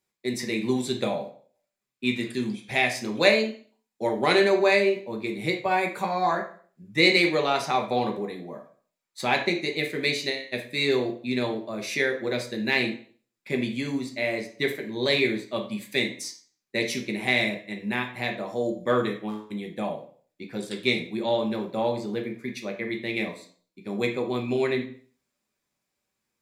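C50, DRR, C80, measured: 9.5 dB, 1.5 dB, 14.0 dB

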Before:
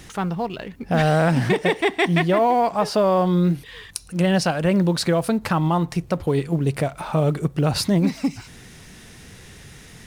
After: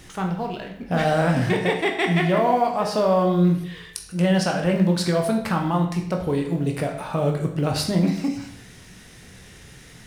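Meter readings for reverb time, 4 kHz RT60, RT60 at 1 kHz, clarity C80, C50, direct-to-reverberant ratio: 0.70 s, 0.60 s, 0.70 s, 10.0 dB, 7.5 dB, 2.0 dB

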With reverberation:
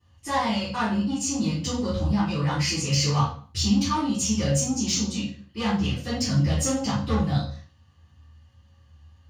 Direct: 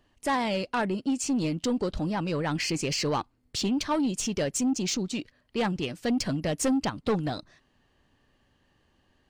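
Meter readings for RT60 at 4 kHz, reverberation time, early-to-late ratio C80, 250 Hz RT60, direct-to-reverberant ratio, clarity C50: 0.40 s, 0.45 s, 8.5 dB, 0.65 s, −15.0 dB, 2.5 dB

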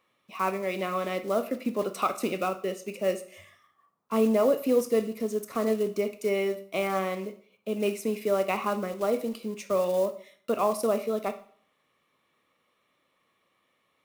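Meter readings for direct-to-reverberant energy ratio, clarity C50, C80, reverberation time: 8.0 dB, 13.0 dB, 17.5 dB, 0.50 s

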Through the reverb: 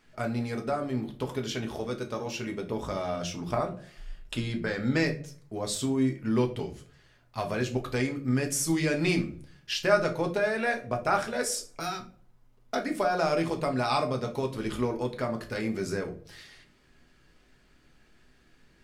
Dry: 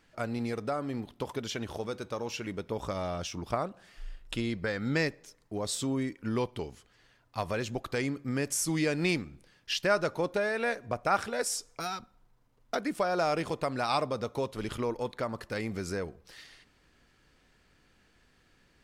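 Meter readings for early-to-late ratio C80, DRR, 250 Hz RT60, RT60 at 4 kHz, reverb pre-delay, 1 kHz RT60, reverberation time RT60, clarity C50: 19.0 dB, 3.0 dB, 0.50 s, 0.25 s, 5 ms, 0.35 s, 0.45 s, 13.5 dB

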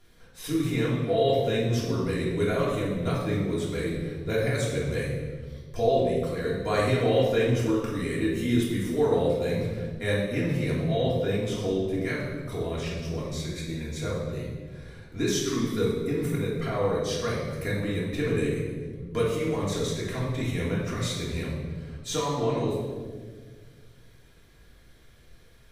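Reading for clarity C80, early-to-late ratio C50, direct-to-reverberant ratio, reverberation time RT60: 4.0 dB, 1.0 dB, −6.5 dB, 1.6 s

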